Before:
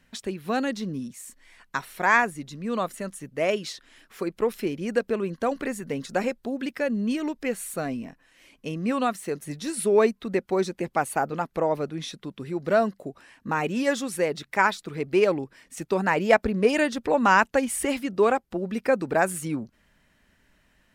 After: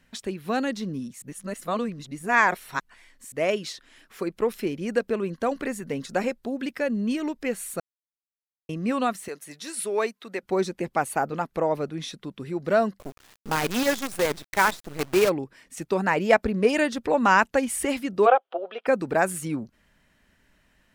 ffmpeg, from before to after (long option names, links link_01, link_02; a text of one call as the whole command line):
ffmpeg -i in.wav -filter_complex "[0:a]asettb=1/sr,asplit=3[link_01][link_02][link_03];[link_01]atrim=end=9.284[link_04];[link_02]atrim=start=9.28:end=10.43,asetpts=PTS-STARTPTS,afade=type=in:duration=0.004:curve=qsin,afade=type=out:start_time=1.146:duration=0.004:curve=qsin,highpass=frequency=870:poles=1[link_05];[link_03]atrim=start=10.426[link_06];[link_04][link_05]acrossfade=duration=0.004:curve1=hsin:curve2=qsin[link_07];[link_07][link_06]acrossfade=duration=0.004:curve1=qsin:curve2=hsin,asplit=3[link_08][link_09][link_10];[link_08]afade=type=out:start_time=12.98:duration=0.02[link_11];[link_09]acrusher=bits=5:dc=4:mix=0:aa=0.000001,afade=type=in:start_time=12.98:duration=0.02,afade=type=out:start_time=15.28:duration=0.02[link_12];[link_10]afade=type=in:start_time=15.28:duration=0.02[link_13];[link_11][link_12][link_13]amix=inputs=3:normalize=0,asplit=3[link_14][link_15][link_16];[link_14]afade=type=out:start_time=18.25:duration=0.02[link_17];[link_15]highpass=frequency=460:width=0.5412,highpass=frequency=460:width=1.3066,equalizer=frequency=500:width_type=q:width=4:gain=6,equalizer=frequency=710:width_type=q:width=4:gain=10,equalizer=frequency=1300:width_type=q:width=4:gain=6,equalizer=frequency=2000:width_type=q:width=4:gain=-6,equalizer=frequency=3200:width_type=q:width=4:gain=10,lowpass=frequency=3400:width=0.5412,lowpass=frequency=3400:width=1.3066,afade=type=in:start_time=18.25:duration=0.02,afade=type=out:start_time=18.86:duration=0.02[link_18];[link_16]afade=type=in:start_time=18.86:duration=0.02[link_19];[link_17][link_18][link_19]amix=inputs=3:normalize=0,asplit=5[link_20][link_21][link_22][link_23][link_24];[link_20]atrim=end=1.222[link_25];[link_21]atrim=start=1.218:end=3.322,asetpts=PTS-STARTPTS,areverse[link_26];[link_22]atrim=start=3.318:end=7.8,asetpts=PTS-STARTPTS,afade=type=out:start_time=4.478:duration=0.004:curve=hsin[link_27];[link_23]atrim=start=7.8:end=8.69,asetpts=PTS-STARTPTS,volume=0[link_28];[link_24]atrim=start=8.69,asetpts=PTS-STARTPTS,afade=type=in:duration=0.004:curve=hsin[link_29];[link_25][link_26]acrossfade=duration=0.004:curve1=hsin:curve2=hsin[link_30];[link_27][link_28][link_29]concat=n=3:v=0:a=1[link_31];[link_30][link_31]acrossfade=duration=0.004:curve1=hsin:curve2=hsin" out.wav